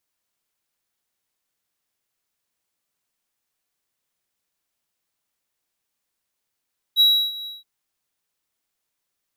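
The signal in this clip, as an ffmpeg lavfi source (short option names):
-f lavfi -i "aevalsrc='0.355*(1-4*abs(mod(3880*t+0.25,1)-0.5))':d=0.674:s=44100,afade=t=in:d=0.044,afade=t=out:st=0.044:d=0.312:silence=0.112,afade=t=out:st=0.5:d=0.174"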